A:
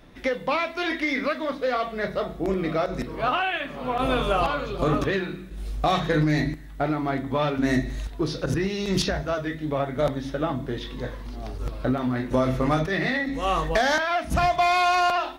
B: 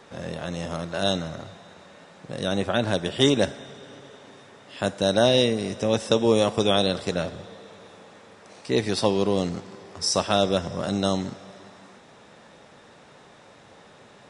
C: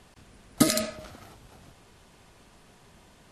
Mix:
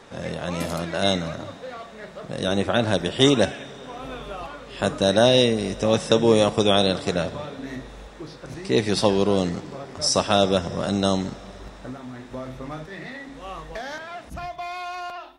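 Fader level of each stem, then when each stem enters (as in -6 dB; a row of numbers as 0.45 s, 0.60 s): -12.0 dB, +2.5 dB, -14.0 dB; 0.00 s, 0.00 s, 0.00 s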